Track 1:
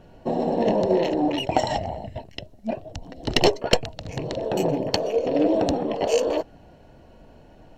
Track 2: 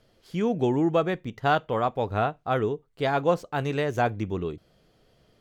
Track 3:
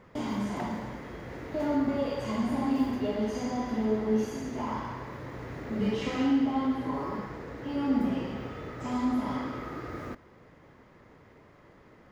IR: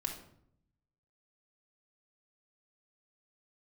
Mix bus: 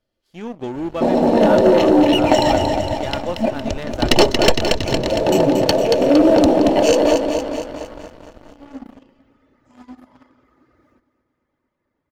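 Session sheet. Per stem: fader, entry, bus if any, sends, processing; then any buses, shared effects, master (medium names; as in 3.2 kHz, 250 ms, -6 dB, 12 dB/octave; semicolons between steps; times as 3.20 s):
+0.5 dB, 0.75 s, no send, echo send -7 dB, none
-11.0 dB, 0.00 s, no send, echo send -20 dB, none
-14.5 dB, 0.85 s, no send, echo send -12.5 dB, reverb removal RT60 1 s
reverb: none
echo: feedback delay 230 ms, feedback 59%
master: comb 3.4 ms, depth 34%; waveshaping leveller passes 2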